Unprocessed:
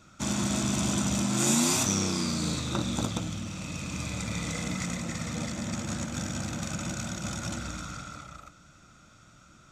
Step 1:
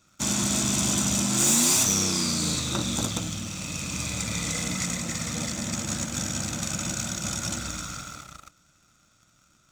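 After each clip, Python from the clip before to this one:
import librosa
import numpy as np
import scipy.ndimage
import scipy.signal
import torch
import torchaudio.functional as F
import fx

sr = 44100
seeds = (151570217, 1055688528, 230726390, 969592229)

y = fx.high_shelf(x, sr, hz=3600.0, db=10.0)
y = fx.leveller(y, sr, passes=2)
y = F.gain(torch.from_numpy(y), -6.5).numpy()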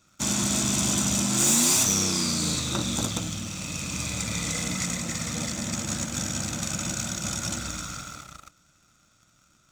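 y = x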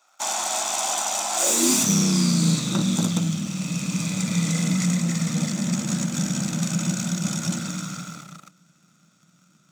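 y = scipy.signal.sosfilt(scipy.signal.butter(2, 100.0, 'highpass', fs=sr, output='sos'), x)
y = fx.filter_sweep_highpass(y, sr, from_hz=770.0, to_hz=170.0, start_s=1.35, end_s=1.85, q=5.4)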